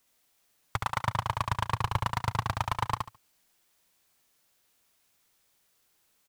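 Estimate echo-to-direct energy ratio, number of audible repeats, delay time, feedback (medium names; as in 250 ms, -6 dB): -4.0 dB, 3, 71 ms, 21%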